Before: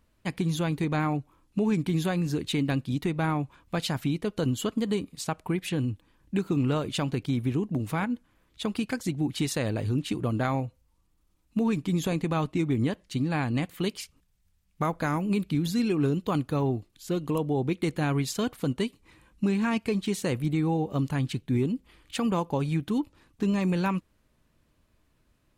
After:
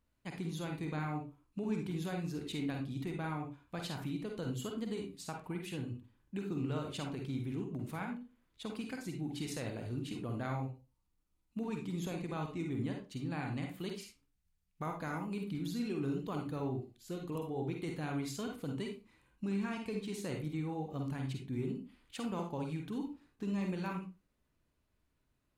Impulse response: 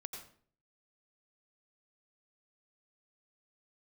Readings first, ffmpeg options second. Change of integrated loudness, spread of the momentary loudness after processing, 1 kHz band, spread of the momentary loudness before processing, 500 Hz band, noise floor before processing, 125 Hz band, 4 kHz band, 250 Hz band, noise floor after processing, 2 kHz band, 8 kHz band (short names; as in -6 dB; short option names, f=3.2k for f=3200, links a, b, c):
-11.0 dB, 7 LU, -10.5 dB, 6 LU, -11.0 dB, -68 dBFS, -11.0 dB, -11.5 dB, -11.0 dB, -79 dBFS, -10.5 dB, -11.5 dB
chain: -filter_complex "[1:a]atrim=start_sample=2205,asetrate=83790,aresample=44100[a];[0:a][a]afir=irnorm=-1:irlink=0,volume=-2.5dB"